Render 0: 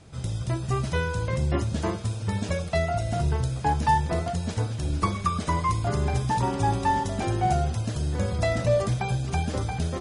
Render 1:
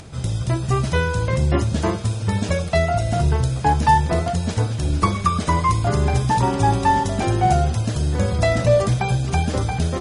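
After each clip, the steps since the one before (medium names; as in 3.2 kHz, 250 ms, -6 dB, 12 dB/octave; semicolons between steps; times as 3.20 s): upward compressor, threshold -42 dBFS; trim +6.5 dB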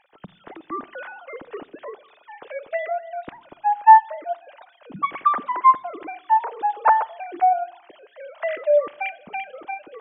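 formants replaced by sine waves; on a send at -17 dB: reverberation RT60 0.85 s, pre-delay 7 ms; on the sum: trim -4.5 dB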